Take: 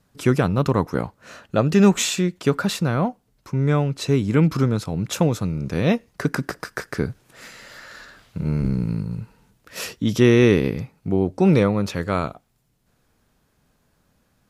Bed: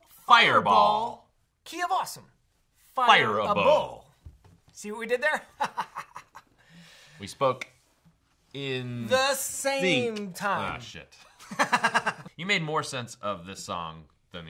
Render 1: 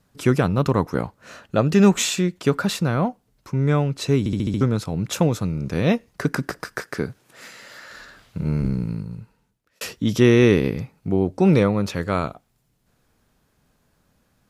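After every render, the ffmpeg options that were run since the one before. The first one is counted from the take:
-filter_complex "[0:a]asettb=1/sr,asplit=3[s0][s1][s2];[s0]atrim=end=6.794[s3];[s1]atrim=start=6.79:end=7.91,asetpts=PTS-STARTPTS,afade=t=in:d=0.004:c=qsin,afade=t=out:st=1.116:d=0.004:c=qsin,highpass=f=180:p=1[s4];[s2]atrim=start=7.906[s5];[s3][s4]acrossfade=d=0.004:c1=hsin:c2=qsin[s6];[s6][s5]acrossfade=d=0.004:c1=qsin:c2=hsin,asplit=8[s7][s8][s9][s10][s11][s12][s13][s14];[s7]atrim=end=4.262[s15];[s8]atrim=start=4.188:end=4.262[s16];[s9]atrim=start=4.188:end=4.262[s17];[s10]atrim=start=4.188:end=4.262[s18];[s11]atrim=start=4.188:end=4.262[s19];[s12]atrim=start=4.188:end=4.262[s20];[s13]atrim=start=4.608:end=9.81,asetpts=PTS-STARTPTS,afade=t=out:st=3.962:d=1.24[s21];[s14]atrim=start=9.81,asetpts=PTS-STARTPTS,afade=t=in:d=0.004:c=hsin[s22];[s15][s16]acrossfade=d=0.004:c1=hsin:c2=hsin[s23];[s23][s17]acrossfade=d=0.004:c1=hsin:c2=hsin[s24];[s24][s18]acrossfade=d=0.004:c1=hsin:c2=hsin[s25];[s25][s19]acrossfade=d=0.004:c1=hsin:c2=hsin[s26];[s26][s20]acrossfade=d=0.004:c1=hsin:c2=hsin[s27];[s21][s22]concat=n=2:v=0:a=1[s28];[s27][s28]acrossfade=d=0.004:c1=hsin:c2=hsin"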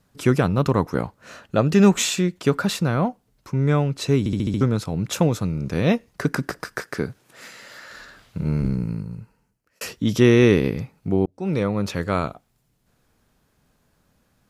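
-filter_complex "[0:a]asettb=1/sr,asplit=3[s0][s1][s2];[s0]atrim=end=8.754[s3];[s1]atrim=start=8.75:end=9.87,asetpts=PTS-STARTPTS,afade=t=in:d=0.004:c=qsin,afade=t=out:st=1.116:d=0.004:c=qsin,equalizer=f=3600:t=o:w=0.23:g=-13[s4];[s2]atrim=start=9.866[s5];[s3][s4]acrossfade=d=0.004:c1=hsin:c2=qsin[s6];[s6][s5]acrossfade=d=0.004:c1=qsin:c2=hsin,asplit=2[s7][s8];[s7]atrim=end=11.26,asetpts=PTS-STARTPTS,afade=t=out:st=11.256:d=0.004:c=hsin[s9];[s8]atrim=start=11.26,asetpts=PTS-STARTPTS,afade=t=in:d=0.64[s10];[s9][s10]concat=n=2:v=0:a=1"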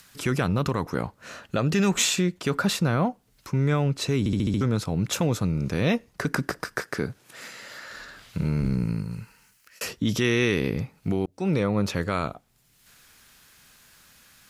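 -filter_complex "[0:a]acrossover=split=1400[s0][s1];[s0]alimiter=limit=0.168:level=0:latency=1[s2];[s1]acompressor=mode=upward:threshold=0.01:ratio=2.5[s3];[s2][s3]amix=inputs=2:normalize=0"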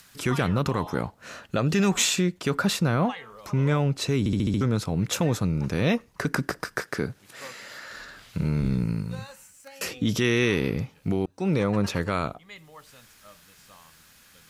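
-filter_complex "[1:a]volume=0.1[s0];[0:a][s0]amix=inputs=2:normalize=0"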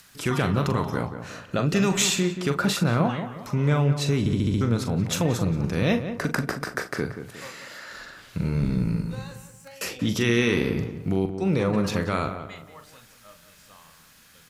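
-filter_complex "[0:a]asplit=2[s0][s1];[s1]adelay=42,volume=0.355[s2];[s0][s2]amix=inputs=2:normalize=0,asplit=2[s3][s4];[s4]adelay=180,lowpass=f=1800:p=1,volume=0.355,asplit=2[s5][s6];[s6]adelay=180,lowpass=f=1800:p=1,volume=0.37,asplit=2[s7][s8];[s8]adelay=180,lowpass=f=1800:p=1,volume=0.37,asplit=2[s9][s10];[s10]adelay=180,lowpass=f=1800:p=1,volume=0.37[s11];[s5][s7][s9][s11]amix=inputs=4:normalize=0[s12];[s3][s12]amix=inputs=2:normalize=0"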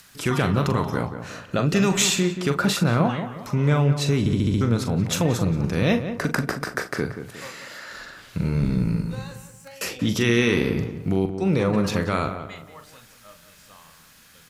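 -af "volume=1.26"

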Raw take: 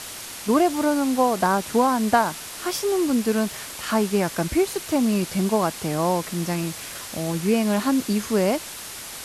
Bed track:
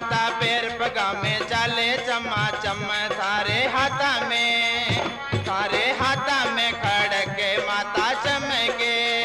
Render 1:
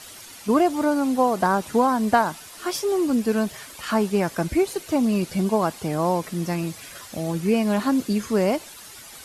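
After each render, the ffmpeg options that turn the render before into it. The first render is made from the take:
-af "afftdn=nr=10:nf=-37"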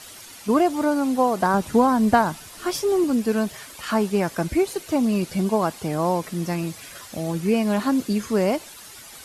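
-filter_complex "[0:a]asettb=1/sr,asplit=3[s0][s1][s2];[s0]atrim=end=1.544[s3];[s1]atrim=start=1.54:end=3.04,asetpts=PTS-STARTPTS,afade=t=in:d=0.004:c=qsin,afade=t=out:st=1.496:d=0.004:c=qsin,lowshelf=f=200:g=9.5[s4];[s2]atrim=start=3.036[s5];[s3][s4]acrossfade=d=0.004:c1=hsin:c2=qsin[s6];[s6][s5]acrossfade=d=0.004:c1=qsin:c2=hsin"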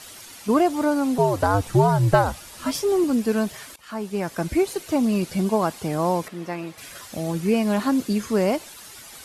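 -filter_complex "[0:a]asettb=1/sr,asplit=3[s0][s1][s2];[s0]atrim=end=1.184[s3];[s1]atrim=start=1.18:end=2.75,asetpts=PTS-STARTPTS,afade=t=in:d=0.004:c=qsin,afade=t=out:st=1.566:d=0.004:c=qsin,afreqshift=-95[s4];[s2]atrim=start=2.746[s5];[s3][s4]acrossfade=d=0.004:c1=hsin:c2=qsin[s6];[s6][s5]acrossfade=d=0.004:c1=qsin:c2=hsin,asettb=1/sr,asplit=3[s7][s8][s9];[s7]atrim=end=6.284[s10];[s8]atrim=start=6.28:end=6.78,asetpts=PTS-STARTPTS,afade=t=in:d=0.004:c=qsin,afade=t=out:st=0.496:d=0.004:c=qsin,bass=f=250:g=-12,treble=f=4000:g=-13[s11];[s9]atrim=start=6.776[s12];[s10][s11]acrossfade=d=0.004:c1=hsin:c2=qsin[s13];[s13][s12]acrossfade=d=0.004:c1=qsin:c2=hsin,asplit=2[s14][s15];[s14]atrim=end=3.76,asetpts=PTS-STARTPTS,afade=t=out:st=3.756:d=0.004:c=hsin:silence=0.105925[s16];[s15]atrim=start=3.76,asetpts=PTS-STARTPTS,afade=t=in:d=0.79:silence=0.105925[s17];[s16][s17]concat=n=2:v=0:a=1"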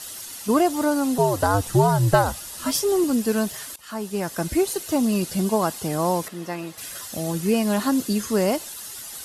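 -af "aemphasis=mode=production:type=cd,bandreject=f=2300:w=9.9"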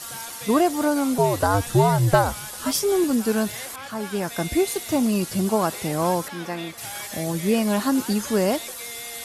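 -filter_complex "[1:a]volume=0.141[s0];[0:a][s0]amix=inputs=2:normalize=0"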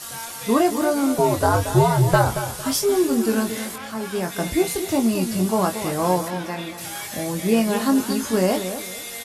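-filter_complex "[0:a]asplit=2[s0][s1];[s1]adelay=22,volume=0.531[s2];[s0][s2]amix=inputs=2:normalize=0,asplit=2[s3][s4];[s4]adelay=228,lowpass=f=2000:p=1,volume=0.335,asplit=2[s5][s6];[s6]adelay=228,lowpass=f=2000:p=1,volume=0.29,asplit=2[s7][s8];[s8]adelay=228,lowpass=f=2000:p=1,volume=0.29[s9];[s3][s5][s7][s9]amix=inputs=4:normalize=0"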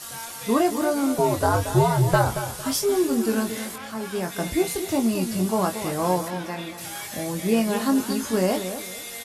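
-af "volume=0.75"

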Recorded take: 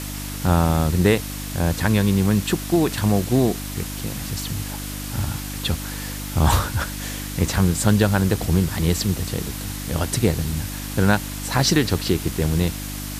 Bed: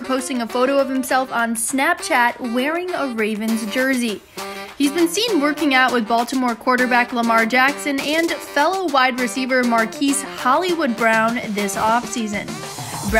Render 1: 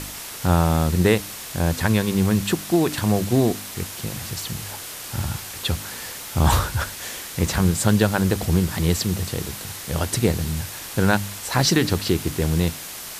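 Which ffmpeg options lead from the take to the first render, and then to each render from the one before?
-af "bandreject=f=50:t=h:w=4,bandreject=f=100:t=h:w=4,bandreject=f=150:t=h:w=4,bandreject=f=200:t=h:w=4,bandreject=f=250:t=h:w=4,bandreject=f=300:t=h:w=4"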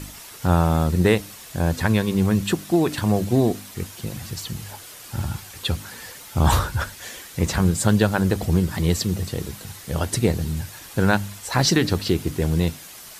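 -af "afftdn=nr=8:nf=-35"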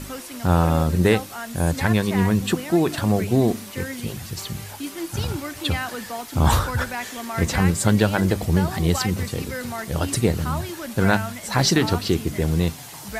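-filter_complex "[1:a]volume=0.188[s0];[0:a][s0]amix=inputs=2:normalize=0"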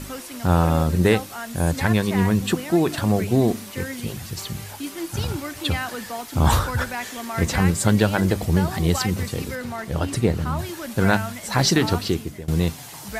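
-filter_complex "[0:a]asettb=1/sr,asplit=3[s0][s1][s2];[s0]atrim=end=9.554[s3];[s1]atrim=start=9.55:end=10.59,asetpts=PTS-STARTPTS,afade=t=in:d=0.004:c=qsin,afade=t=out:st=1.036:d=0.004:c=qsin,highshelf=f=4400:g=-8.5[s4];[s2]atrim=start=10.586[s5];[s3][s4]acrossfade=d=0.004:c1=hsin:c2=qsin[s6];[s6][s5]acrossfade=d=0.004:c1=qsin:c2=hsin,asplit=2[s7][s8];[s7]atrim=end=12.48,asetpts=PTS-STARTPTS,afade=t=out:st=12.02:d=0.46:silence=0.1[s9];[s8]atrim=start=12.48,asetpts=PTS-STARTPTS,afade=t=in:d=0.004:c=hsin:silence=0.1[s10];[s9][s10]concat=n=2:v=0:a=1"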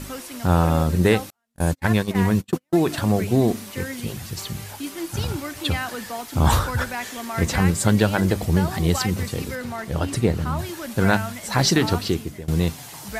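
-filter_complex "[0:a]asettb=1/sr,asplit=3[s0][s1][s2];[s0]atrim=end=1.304[s3];[s1]atrim=start=1.3:end=2.8,asetpts=PTS-STARTPTS,afade=t=in:d=0.004:c=qsin,afade=t=out:st=1.496:d=0.004:c=qsin,agate=range=0.00562:threshold=0.0708:ratio=16:release=100:detection=peak[s4];[s2]atrim=start=2.796[s5];[s3][s4]acrossfade=d=0.004:c1=hsin:c2=qsin[s6];[s6][s5]acrossfade=d=0.004:c1=qsin:c2=hsin"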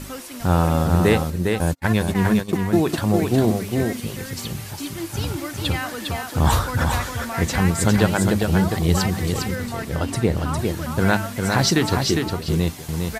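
-af "aecho=1:1:405:0.596"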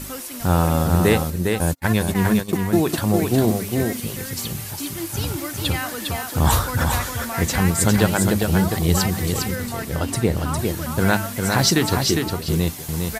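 -af "highshelf=f=8700:g=10.5"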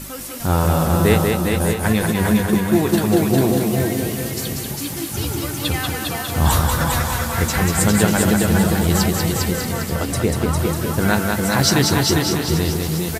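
-filter_complex "[0:a]asplit=2[s0][s1];[s1]adelay=14,volume=0.266[s2];[s0][s2]amix=inputs=2:normalize=0,asplit=2[s3][s4];[s4]aecho=0:1:190|399|628.9|881.8|1160:0.631|0.398|0.251|0.158|0.1[s5];[s3][s5]amix=inputs=2:normalize=0"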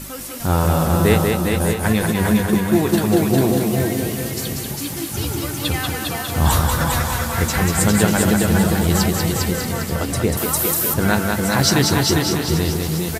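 -filter_complex "[0:a]asettb=1/sr,asplit=3[s0][s1][s2];[s0]atrim=end=10.374[s3];[s1]atrim=start=10.37:end=10.94,asetpts=PTS-STARTPTS,afade=t=in:d=0.004:c=qsin,afade=t=out:st=0.566:d=0.004:c=qsin,aemphasis=mode=production:type=bsi[s4];[s2]atrim=start=10.936[s5];[s3][s4]acrossfade=d=0.004:c1=hsin:c2=qsin[s6];[s6][s5]acrossfade=d=0.004:c1=qsin:c2=hsin"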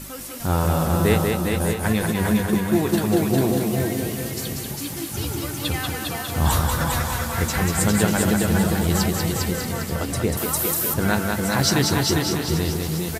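-af "volume=0.668"

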